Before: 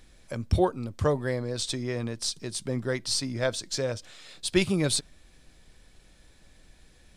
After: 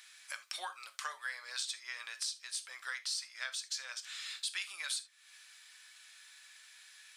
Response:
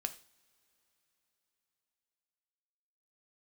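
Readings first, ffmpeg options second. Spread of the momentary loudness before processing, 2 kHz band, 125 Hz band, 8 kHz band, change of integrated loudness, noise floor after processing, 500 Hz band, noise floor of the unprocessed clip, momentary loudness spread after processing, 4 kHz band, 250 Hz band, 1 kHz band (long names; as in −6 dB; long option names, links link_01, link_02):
9 LU, −3.5 dB, below −40 dB, −7.0 dB, −10.5 dB, −62 dBFS, −33.0 dB, −58 dBFS, 18 LU, −6.0 dB, below −40 dB, −11.0 dB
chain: -filter_complex "[0:a]highpass=frequency=1300:width=0.5412,highpass=frequency=1300:width=1.3066,acompressor=threshold=-45dB:ratio=4[link_01];[1:a]atrim=start_sample=2205,atrim=end_sample=3969[link_02];[link_01][link_02]afir=irnorm=-1:irlink=0,volume=7dB"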